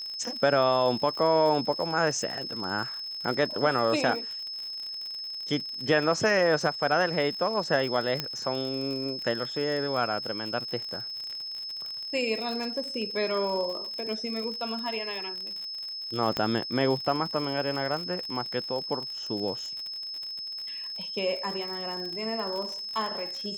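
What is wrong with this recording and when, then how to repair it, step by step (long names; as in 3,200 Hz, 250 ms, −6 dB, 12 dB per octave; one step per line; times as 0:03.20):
surface crackle 60 per second −33 dBFS
whistle 5,200 Hz −34 dBFS
0:08.20: click −13 dBFS
0:16.37: click −14 dBFS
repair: click removal
notch filter 5,200 Hz, Q 30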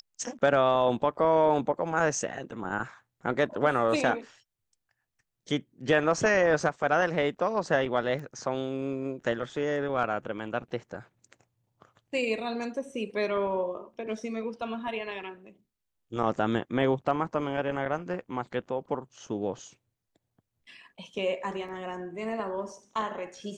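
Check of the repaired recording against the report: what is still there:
0:08.20: click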